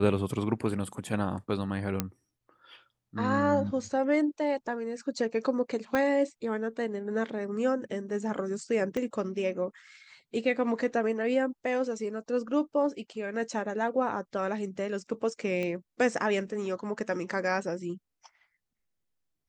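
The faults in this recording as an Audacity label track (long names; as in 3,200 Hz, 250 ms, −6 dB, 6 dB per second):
2.000000	2.000000	click −12 dBFS
5.950000	5.950000	click −15 dBFS
8.970000	8.970000	click −20 dBFS
15.630000	15.630000	click −21 dBFS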